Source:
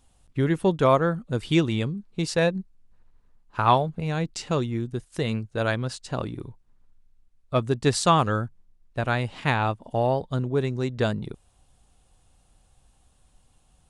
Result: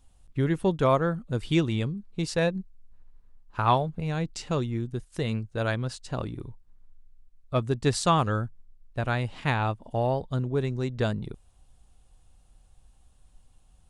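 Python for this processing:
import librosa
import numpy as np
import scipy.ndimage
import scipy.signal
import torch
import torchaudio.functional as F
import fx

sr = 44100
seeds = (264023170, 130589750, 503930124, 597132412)

y = fx.low_shelf(x, sr, hz=71.0, db=10.0)
y = y * librosa.db_to_amplitude(-3.5)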